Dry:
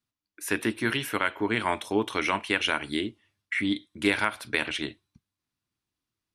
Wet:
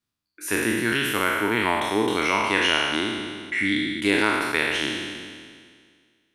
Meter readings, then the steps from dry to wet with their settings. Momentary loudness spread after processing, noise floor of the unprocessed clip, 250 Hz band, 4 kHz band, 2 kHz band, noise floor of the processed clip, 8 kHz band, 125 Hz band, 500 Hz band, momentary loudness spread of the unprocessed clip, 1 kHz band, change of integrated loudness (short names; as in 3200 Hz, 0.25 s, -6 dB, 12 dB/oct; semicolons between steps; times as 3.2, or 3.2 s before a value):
11 LU, under -85 dBFS, +4.5 dB, +6.5 dB, +6.0 dB, -82 dBFS, +7.0 dB, +3.5 dB, +5.0 dB, 6 LU, +5.5 dB, +5.0 dB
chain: spectral trails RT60 1.93 s